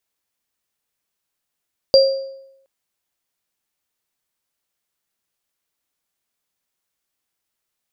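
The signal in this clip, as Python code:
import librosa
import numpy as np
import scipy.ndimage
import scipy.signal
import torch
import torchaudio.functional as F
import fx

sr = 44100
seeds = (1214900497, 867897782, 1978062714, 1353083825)

y = fx.additive_free(sr, length_s=0.72, hz=540.0, level_db=-6.0, upper_db=(-5.5,), decay_s=0.83, upper_decays_s=(0.52,), upper_hz=(4750.0,))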